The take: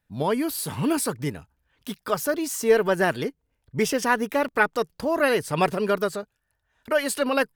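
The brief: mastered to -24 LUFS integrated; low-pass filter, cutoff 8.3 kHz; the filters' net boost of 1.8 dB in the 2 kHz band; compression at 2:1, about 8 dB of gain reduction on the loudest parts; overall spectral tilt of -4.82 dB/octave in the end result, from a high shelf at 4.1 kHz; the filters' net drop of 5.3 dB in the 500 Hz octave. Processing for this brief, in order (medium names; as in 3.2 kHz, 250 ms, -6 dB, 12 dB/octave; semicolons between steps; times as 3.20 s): low-pass 8.3 kHz; peaking EQ 500 Hz -6.5 dB; peaking EQ 2 kHz +4.5 dB; treble shelf 4.1 kHz -7.5 dB; compression 2:1, threshold -30 dBFS; trim +8 dB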